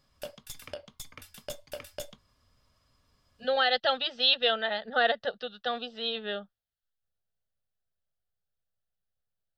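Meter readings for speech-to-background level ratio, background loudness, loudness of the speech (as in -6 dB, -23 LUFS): 15.5 dB, -43.5 LUFS, -28.0 LUFS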